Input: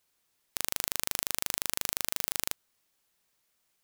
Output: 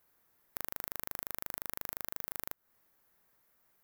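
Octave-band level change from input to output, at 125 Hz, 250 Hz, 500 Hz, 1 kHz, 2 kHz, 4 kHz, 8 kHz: -6.0 dB, -6.0 dB, -6.0 dB, -6.0 dB, -9.0 dB, -17.5 dB, -15.5 dB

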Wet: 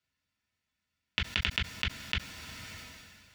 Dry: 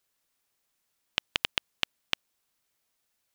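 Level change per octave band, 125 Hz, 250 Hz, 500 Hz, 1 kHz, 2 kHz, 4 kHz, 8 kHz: +15.5 dB, +5.5 dB, -4.0 dB, -1.5 dB, +1.5 dB, -2.0 dB, -1.5 dB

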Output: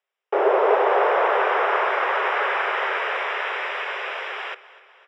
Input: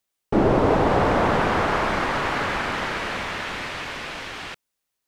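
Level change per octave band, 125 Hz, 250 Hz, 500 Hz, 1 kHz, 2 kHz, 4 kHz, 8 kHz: under -40 dB, -13.0 dB, +2.0 dB, +2.5 dB, +3.0 dB, -1.5 dB, under -10 dB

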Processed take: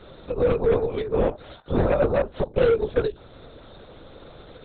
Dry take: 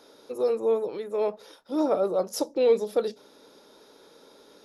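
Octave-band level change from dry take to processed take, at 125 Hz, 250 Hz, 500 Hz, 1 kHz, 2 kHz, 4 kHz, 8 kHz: no reading, +2.5 dB, +3.0 dB, +3.0 dB, +12.0 dB, -0.5 dB, under -35 dB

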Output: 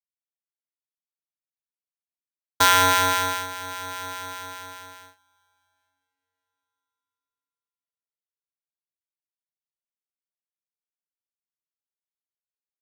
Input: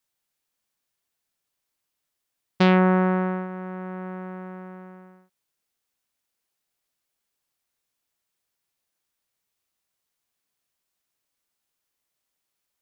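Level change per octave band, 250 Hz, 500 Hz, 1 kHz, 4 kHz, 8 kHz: -15.5 dB, -6.0 dB, +6.0 dB, +13.5 dB, no reading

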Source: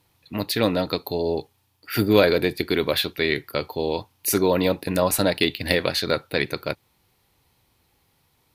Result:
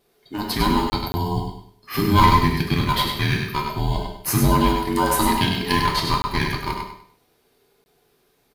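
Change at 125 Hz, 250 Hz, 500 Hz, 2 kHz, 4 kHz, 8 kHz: +8.5 dB, +2.5 dB, -6.5 dB, +0.5 dB, +1.0 dB, +1.0 dB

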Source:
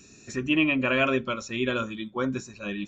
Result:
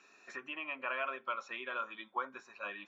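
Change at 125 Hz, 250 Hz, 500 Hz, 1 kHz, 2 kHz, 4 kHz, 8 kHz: under -35 dB, -27.0 dB, -16.0 dB, -5.0 dB, -11.0 dB, -15.5 dB, no reading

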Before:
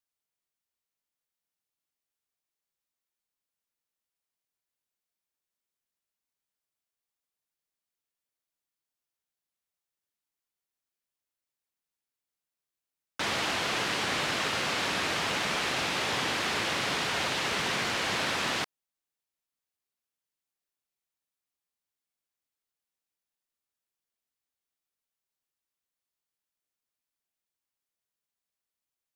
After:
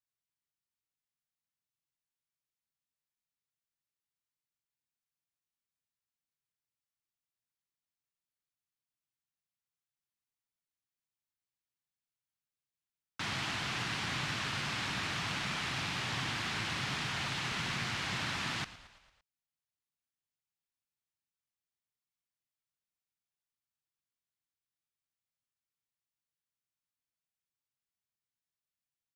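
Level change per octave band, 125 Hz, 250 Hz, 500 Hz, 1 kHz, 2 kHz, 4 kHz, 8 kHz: +2.0 dB, -5.0 dB, -13.0 dB, -7.5 dB, -6.0 dB, -6.5 dB, -8.0 dB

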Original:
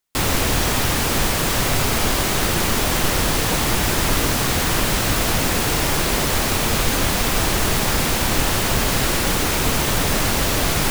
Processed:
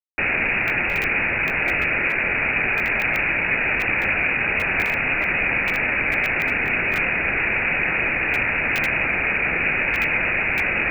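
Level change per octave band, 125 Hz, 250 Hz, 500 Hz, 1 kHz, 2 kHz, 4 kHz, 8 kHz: -11.5 dB, -8.0 dB, -5.5 dB, -5.5 dB, +7.0 dB, -14.5 dB, under -25 dB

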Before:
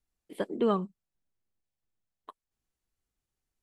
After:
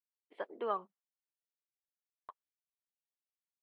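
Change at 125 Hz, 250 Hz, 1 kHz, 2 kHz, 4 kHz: under -25 dB, -21.5 dB, -3.0 dB, -4.5 dB, -11.0 dB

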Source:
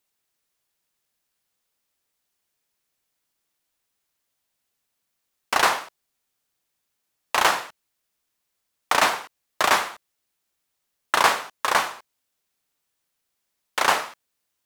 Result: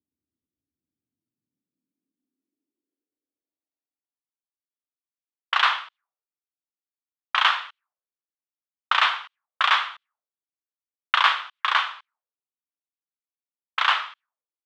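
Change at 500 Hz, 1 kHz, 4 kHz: -16.0 dB, -1.5 dB, +3.0 dB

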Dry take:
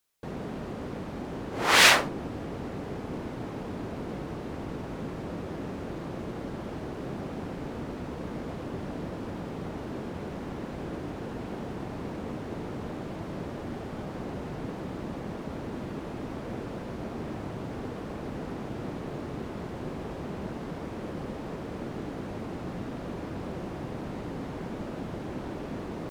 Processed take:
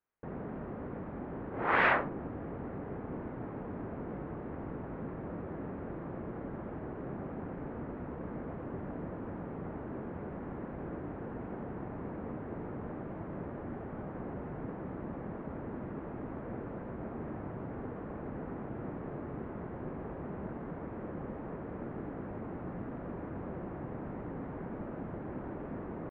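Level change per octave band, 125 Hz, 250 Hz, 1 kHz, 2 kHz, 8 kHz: -4.5 dB, -4.5 dB, -4.5 dB, -8.0 dB, under -40 dB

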